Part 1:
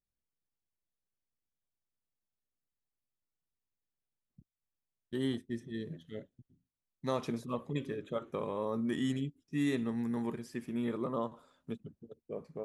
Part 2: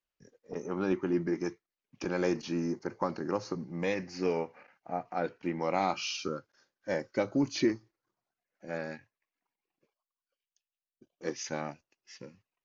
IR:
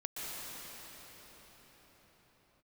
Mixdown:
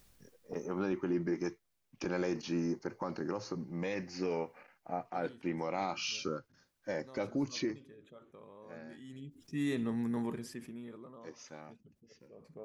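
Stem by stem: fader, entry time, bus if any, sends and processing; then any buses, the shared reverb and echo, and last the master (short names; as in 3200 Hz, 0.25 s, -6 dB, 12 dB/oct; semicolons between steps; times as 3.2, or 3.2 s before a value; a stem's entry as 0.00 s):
-2.5 dB, 0.00 s, no send, fast leveller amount 50%; auto duck -19 dB, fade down 1.00 s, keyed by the second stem
7.47 s -1.5 dB -> 7.98 s -14 dB, 0.00 s, no send, dry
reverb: off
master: limiter -24.5 dBFS, peak gain reduction 7 dB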